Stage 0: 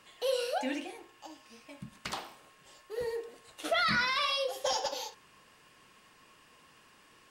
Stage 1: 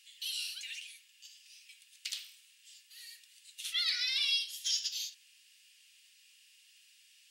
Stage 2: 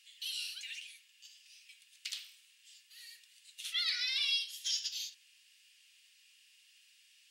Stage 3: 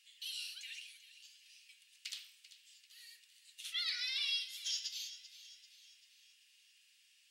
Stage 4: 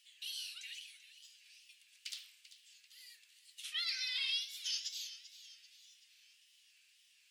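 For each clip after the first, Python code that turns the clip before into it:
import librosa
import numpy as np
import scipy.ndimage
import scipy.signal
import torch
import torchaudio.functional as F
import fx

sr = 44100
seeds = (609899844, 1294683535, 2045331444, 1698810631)

y1 = scipy.signal.sosfilt(scipy.signal.cheby2(4, 60, 800.0, 'highpass', fs=sr, output='sos'), x)
y1 = y1 * 10.0 ** (3.5 / 20.0)
y2 = fx.high_shelf(y1, sr, hz=4900.0, db=-4.5)
y3 = fx.echo_wet_highpass(y2, sr, ms=390, feedback_pct=50, hz=1600.0, wet_db=-14.5)
y3 = y3 * 10.0 ** (-4.0 / 20.0)
y4 = fx.wow_flutter(y3, sr, seeds[0], rate_hz=2.1, depth_cents=110.0)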